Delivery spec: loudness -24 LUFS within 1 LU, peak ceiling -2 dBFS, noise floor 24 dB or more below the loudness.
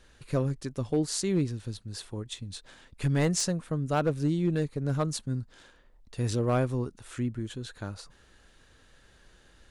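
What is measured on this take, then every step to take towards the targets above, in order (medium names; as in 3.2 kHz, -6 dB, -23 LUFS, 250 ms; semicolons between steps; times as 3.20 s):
clipped samples 0.5%; clipping level -19.0 dBFS; loudness -30.5 LUFS; peak level -19.0 dBFS; loudness target -24.0 LUFS
-> clip repair -19 dBFS; trim +6.5 dB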